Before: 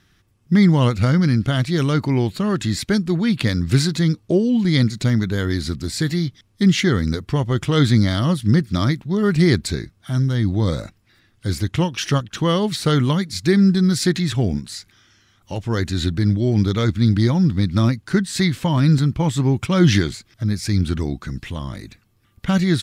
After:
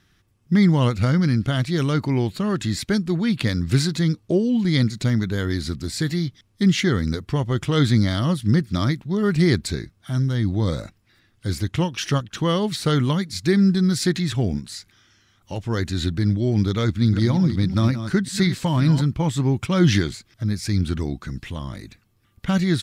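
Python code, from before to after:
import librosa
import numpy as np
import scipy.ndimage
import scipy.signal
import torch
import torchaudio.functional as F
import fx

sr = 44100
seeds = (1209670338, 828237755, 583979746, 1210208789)

y = fx.reverse_delay(x, sr, ms=182, wet_db=-10, at=(16.83, 19.02))
y = y * librosa.db_to_amplitude(-2.5)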